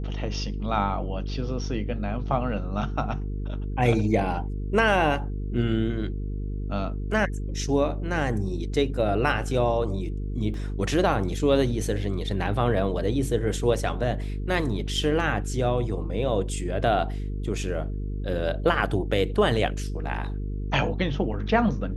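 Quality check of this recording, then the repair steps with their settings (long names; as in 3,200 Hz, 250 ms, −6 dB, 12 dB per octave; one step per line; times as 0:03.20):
mains buzz 50 Hz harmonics 9 −30 dBFS
0:10.54: drop-out 2.3 ms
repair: hum removal 50 Hz, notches 9
repair the gap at 0:10.54, 2.3 ms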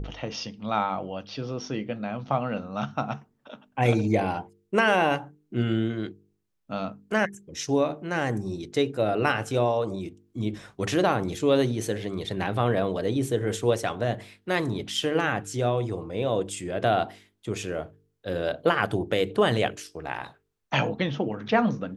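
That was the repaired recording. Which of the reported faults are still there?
none of them is left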